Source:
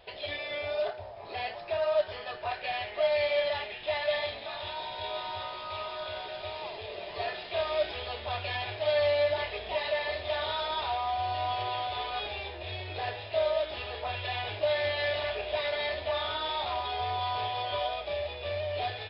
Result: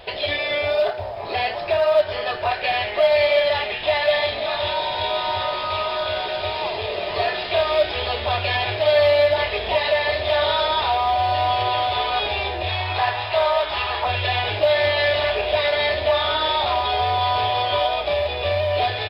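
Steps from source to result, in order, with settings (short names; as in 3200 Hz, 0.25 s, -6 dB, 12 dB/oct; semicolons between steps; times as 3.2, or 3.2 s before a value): 12.69–14.05 ten-band EQ 125 Hz -4 dB, 250 Hz -7 dB, 500 Hz -9 dB, 1000 Hz +11 dB; in parallel at 0 dB: compressor 20:1, threshold -35 dBFS, peak gain reduction 14.5 dB; on the sum: short-mantissa float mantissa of 6-bit; outdoor echo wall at 240 m, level -12 dB; gain +8 dB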